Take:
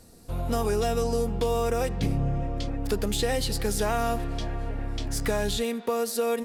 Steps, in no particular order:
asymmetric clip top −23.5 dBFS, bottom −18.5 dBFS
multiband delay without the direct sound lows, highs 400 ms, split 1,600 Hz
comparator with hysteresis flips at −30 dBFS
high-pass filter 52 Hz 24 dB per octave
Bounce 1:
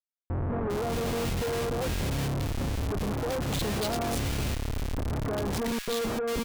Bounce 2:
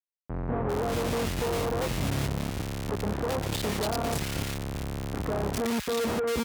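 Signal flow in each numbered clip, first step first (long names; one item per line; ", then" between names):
asymmetric clip, then high-pass filter, then comparator with hysteresis, then multiband delay without the direct sound
comparator with hysteresis, then multiband delay without the direct sound, then asymmetric clip, then high-pass filter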